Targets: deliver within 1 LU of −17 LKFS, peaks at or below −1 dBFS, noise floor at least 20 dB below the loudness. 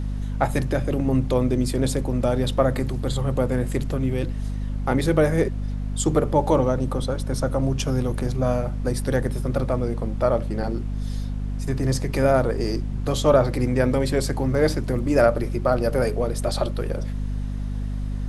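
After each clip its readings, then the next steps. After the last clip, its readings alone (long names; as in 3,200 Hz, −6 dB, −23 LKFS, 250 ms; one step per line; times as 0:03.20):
mains hum 50 Hz; hum harmonics up to 250 Hz; level of the hum −25 dBFS; background noise floor −28 dBFS; target noise floor −44 dBFS; integrated loudness −23.5 LKFS; sample peak −5.0 dBFS; target loudness −17.0 LKFS
→ mains-hum notches 50/100/150/200/250 Hz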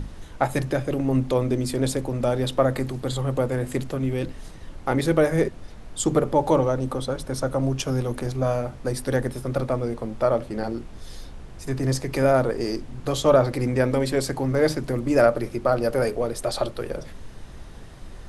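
mains hum none found; background noise floor −41 dBFS; target noise floor −45 dBFS
→ noise reduction from a noise print 6 dB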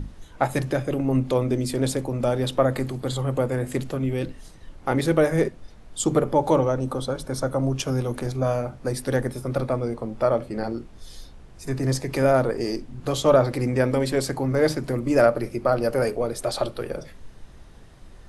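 background noise floor −46 dBFS; integrated loudness −24.0 LKFS; sample peak −5.0 dBFS; target loudness −17.0 LKFS
→ level +7 dB
brickwall limiter −1 dBFS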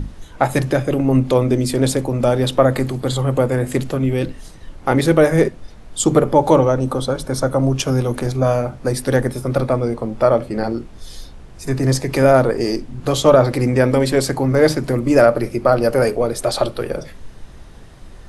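integrated loudness −17.5 LKFS; sample peak −1.0 dBFS; background noise floor −39 dBFS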